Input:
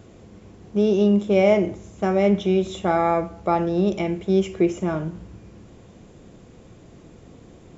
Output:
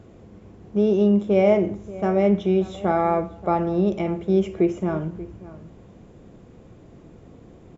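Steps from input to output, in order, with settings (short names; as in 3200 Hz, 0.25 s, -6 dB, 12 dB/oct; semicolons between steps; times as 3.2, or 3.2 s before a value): high shelf 2600 Hz -10 dB; outdoor echo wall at 100 m, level -17 dB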